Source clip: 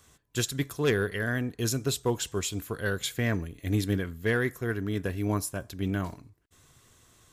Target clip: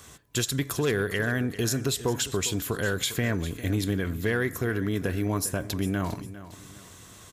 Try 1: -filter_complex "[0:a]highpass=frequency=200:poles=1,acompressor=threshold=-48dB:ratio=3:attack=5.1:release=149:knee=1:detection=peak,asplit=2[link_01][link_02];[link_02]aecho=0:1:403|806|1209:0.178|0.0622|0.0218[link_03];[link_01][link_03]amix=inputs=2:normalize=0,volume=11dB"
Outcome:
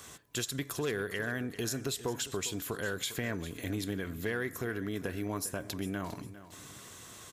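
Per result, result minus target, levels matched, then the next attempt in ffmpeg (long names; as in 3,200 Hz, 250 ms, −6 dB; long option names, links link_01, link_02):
downward compressor: peak gain reduction +7 dB; 125 Hz band −3.0 dB
-filter_complex "[0:a]highpass=frequency=200:poles=1,acompressor=threshold=-37dB:ratio=3:attack=5.1:release=149:knee=1:detection=peak,asplit=2[link_01][link_02];[link_02]aecho=0:1:403|806|1209:0.178|0.0622|0.0218[link_03];[link_01][link_03]amix=inputs=2:normalize=0,volume=11dB"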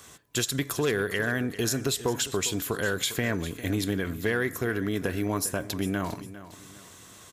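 125 Hz band −3.5 dB
-filter_complex "[0:a]highpass=frequency=60:poles=1,acompressor=threshold=-37dB:ratio=3:attack=5.1:release=149:knee=1:detection=peak,asplit=2[link_01][link_02];[link_02]aecho=0:1:403|806|1209:0.178|0.0622|0.0218[link_03];[link_01][link_03]amix=inputs=2:normalize=0,volume=11dB"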